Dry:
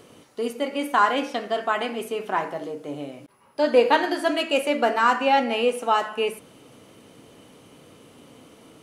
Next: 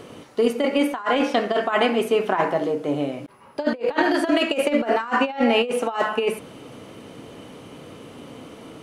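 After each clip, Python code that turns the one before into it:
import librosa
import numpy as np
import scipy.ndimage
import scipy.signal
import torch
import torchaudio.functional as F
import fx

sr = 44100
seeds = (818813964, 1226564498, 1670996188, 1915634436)

y = fx.over_compress(x, sr, threshold_db=-25.0, ratio=-0.5)
y = fx.high_shelf(y, sr, hz=5000.0, db=-9.0)
y = y * librosa.db_to_amplitude(5.5)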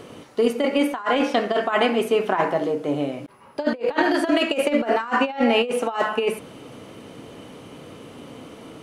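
y = x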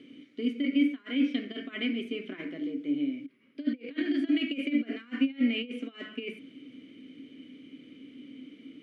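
y = fx.vowel_filter(x, sr, vowel='i')
y = y * librosa.db_to_amplitude(1.0)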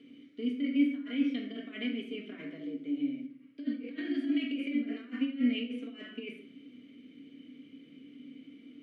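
y = fx.room_shoebox(x, sr, seeds[0], volume_m3=700.0, walls='furnished', distance_m=1.7)
y = y * librosa.db_to_amplitude(-7.0)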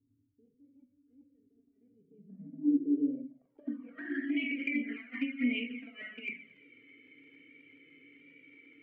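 y = fx.dmg_crackle(x, sr, seeds[1], per_s=32.0, level_db=-51.0)
y = fx.filter_sweep_lowpass(y, sr, from_hz=100.0, to_hz=2200.0, start_s=1.82, end_s=4.38, q=7.0)
y = fx.env_flanger(y, sr, rest_ms=2.7, full_db=-24.5)
y = y * librosa.db_to_amplitude(-2.5)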